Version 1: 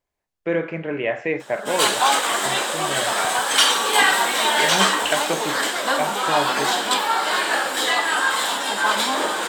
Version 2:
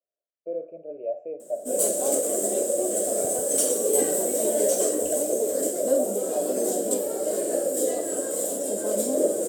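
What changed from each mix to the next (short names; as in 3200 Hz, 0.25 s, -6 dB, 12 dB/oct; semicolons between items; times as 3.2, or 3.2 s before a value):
speech: add vowel filter a; master: add EQ curve 180 Hz 0 dB, 590 Hz +7 dB, 890 Hz -29 dB, 3800 Hz -27 dB, 7800 Hz +2 dB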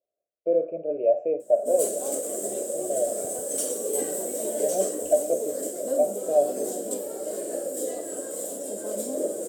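speech +9.0 dB; background -5.5 dB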